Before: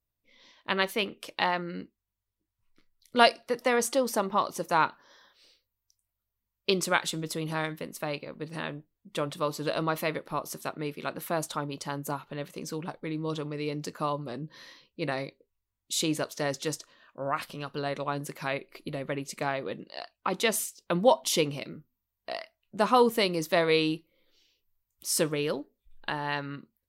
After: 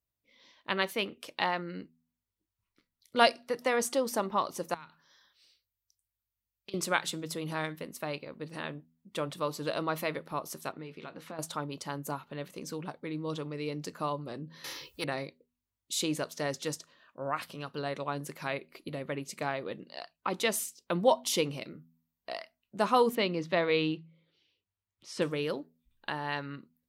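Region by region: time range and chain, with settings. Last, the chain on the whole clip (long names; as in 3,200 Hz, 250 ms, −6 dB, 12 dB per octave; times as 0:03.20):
0:04.74–0:06.74: parametric band 500 Hz −11.5 dB 2.6 octaves + downward compressor 12 to 1, threshold −40 dBFS
0:10.72–0:11.39: low-pass filter 5,400 Hz + downward compressor 4 to 1, threshold −37 dBFS + double-tracking delay 19 ms −11 dB
0:14.64–0:15.04: high-shelf EQ 6,900 Hz +10.5 dB + comb filter 2.3 ms, depth 82% + every bin compressed towards the loudest bin 2 to 1
0:23.15–0:25.22: Chebyshev band-pass filter 110–3,200 Hz + low-shelf EQ 150 Hz +5.5 dB
whole clip: high-pass filter 44 Hz; hum removal 81.35 Hz, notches 3; level −3 dB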